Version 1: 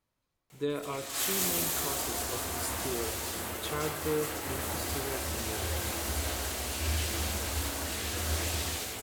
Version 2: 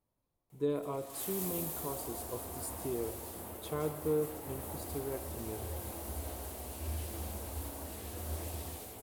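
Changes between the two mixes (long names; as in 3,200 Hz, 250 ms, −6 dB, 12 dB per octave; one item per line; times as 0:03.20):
background −6.5 dB
master: add flat-topped bell 3,100 Hz −10.5 dB 2.9 octaves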